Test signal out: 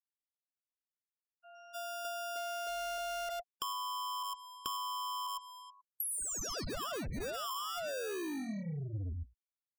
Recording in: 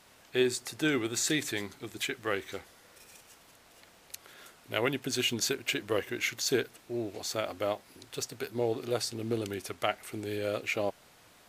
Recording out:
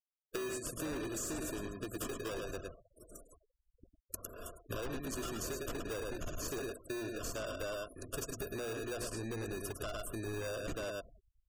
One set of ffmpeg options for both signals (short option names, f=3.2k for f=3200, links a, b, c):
-filter_complex "[0:a]agate=range=-33dB:threshold=-47dB:ratio=3:detection=peak,acrossover=split=200|5800[a][b][c];[b]acrusher=samples=21:mix=1:aa=0.000001[d];[a][d][c]amix=inputs=3:normalize=0,asuperstop=centerf=840:order=20:qfactor=2.9,asubboost=boost=3:cutoff=77,asplit=2[e][f];[f]aecho=0:1:105:0.376[g];[e][g]amix=inputs=2:normalize=0,acontrast=27,highshelf=f=8.1k:g=3,alimiter=limit=-17dB:level=0:latency=1:release=38,asoftclip=type=tanh:threshold=-28.5dB,acompressor=threshold=-42dB:ratio=20,bandreject=f=60:t=h:w=6,bandreject=f=120:t=h:w=6,bandreject=f=180:t=h:w=6,bandreject=f=240:t=h:w=6,afftfilt=real='re*gte(hypot(re,im),0.00224)':imag='im*gte(hypot(re,im),0.00224)':win_size=1024:overlap=0.75,volume=5dB"